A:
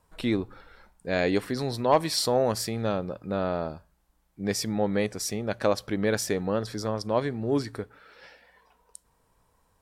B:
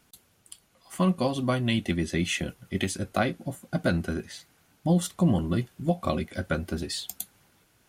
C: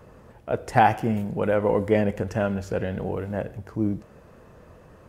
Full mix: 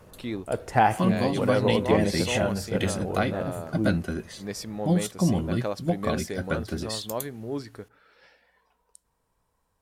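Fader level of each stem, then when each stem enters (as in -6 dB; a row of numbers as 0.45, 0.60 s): -6.5, -0.5, -2.5 dB; 0.00, 0.00, 0.00 s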